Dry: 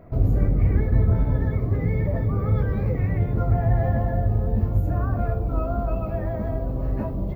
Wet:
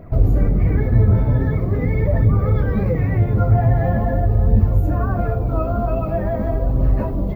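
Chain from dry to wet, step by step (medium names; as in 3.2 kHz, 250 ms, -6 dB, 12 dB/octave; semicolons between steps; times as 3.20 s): in parallel at -2.5 dB: peak limiter -16.5 dBFS, peak gain reduction 8 dB; on the sum: flange 0.44 Hz, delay 0.2 ms, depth 9.9 ms, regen +49%; trim +5.5 dB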